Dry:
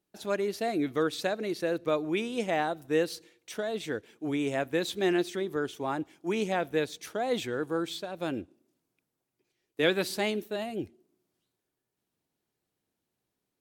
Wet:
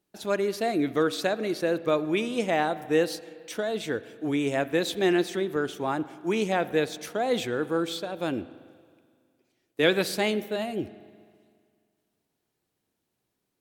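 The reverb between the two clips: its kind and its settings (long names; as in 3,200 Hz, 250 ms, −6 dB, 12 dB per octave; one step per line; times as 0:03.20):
spring reverb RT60 2 s, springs 42/46 ms, chirp 40 ms, DRR 15.5 dB
level +3.5 dB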